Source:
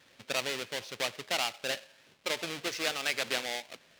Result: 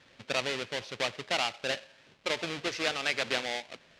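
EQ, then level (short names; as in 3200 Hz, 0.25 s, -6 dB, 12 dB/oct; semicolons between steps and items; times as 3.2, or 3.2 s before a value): air absorption 73 m; low shelf 97 Hz +6.5 dB; +2.5 dB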